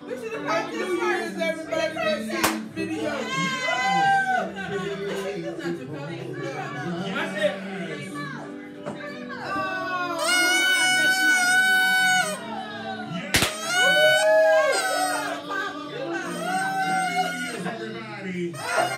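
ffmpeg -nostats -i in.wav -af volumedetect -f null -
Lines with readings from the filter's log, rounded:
mean_volume: -24.6 dB
max_volume: -7.1 dB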